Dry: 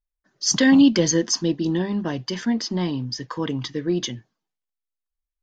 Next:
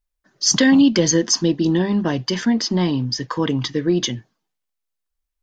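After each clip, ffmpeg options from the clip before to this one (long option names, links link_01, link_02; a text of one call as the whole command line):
ffmpeg -i in.wav -af "acompressor=threshold=-20dB:ratio=2,volume=6dB" out.wav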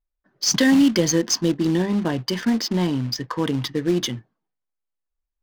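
ffmpeg -i in.wav -af "acrusher=bits=4:mode=log:mix=0:aa=0.000001,adynamicsmooth=sensitivity=4.5:basefreq=2000,volume=-2.5dB" out.wav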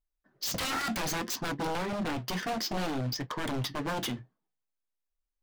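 ffmpeg -i in.wav -af "aeval=exprs='0.0708*(abs(mod(val(0)/0.0708+3,4)-2)-1)':channel_layout=same,flanger=delay=6.4:depth=6.1:regen=-60:speed=0.61:shape=sinusoidal" out.wav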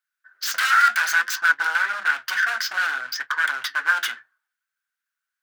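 ffmpeg -i in.wav -af "highpass=frequency=1500:width_type=q:width=10,volume=5.5dB" out.wav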